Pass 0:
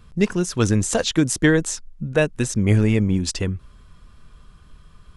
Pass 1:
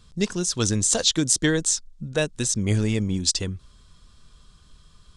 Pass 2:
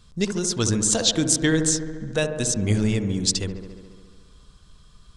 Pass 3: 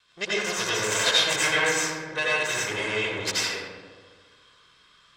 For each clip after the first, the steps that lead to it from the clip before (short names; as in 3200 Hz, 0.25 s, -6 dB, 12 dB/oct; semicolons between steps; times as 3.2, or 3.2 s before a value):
band shelf 5500 Hz +11 dB; gain -5.5 dB
dark delay 70 ms, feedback 76%, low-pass 1300 Hz, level -7 dB
minimum comb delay 1.9 ms; band-pass 2100 Hz, Q 1.2; reverb RT60 1.1 s, pre-delay 77 ms, DRR -6.5 dB; gain +2.5 dB